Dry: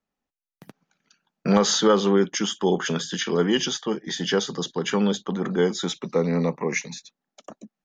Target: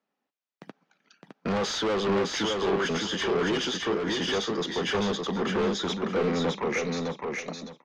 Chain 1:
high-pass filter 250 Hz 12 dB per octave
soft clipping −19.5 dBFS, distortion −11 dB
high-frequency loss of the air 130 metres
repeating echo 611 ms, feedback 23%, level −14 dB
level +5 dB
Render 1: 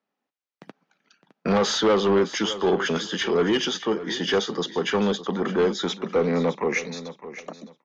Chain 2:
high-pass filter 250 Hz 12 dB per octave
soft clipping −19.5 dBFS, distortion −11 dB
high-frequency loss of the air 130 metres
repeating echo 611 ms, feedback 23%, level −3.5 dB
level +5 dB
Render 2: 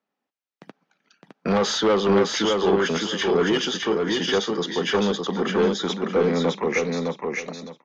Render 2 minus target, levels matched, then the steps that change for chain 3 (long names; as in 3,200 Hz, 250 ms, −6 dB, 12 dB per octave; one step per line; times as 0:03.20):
soft clipping: distortion −7 dB
change: soft clipping −29 dBFS, distortion −5 dB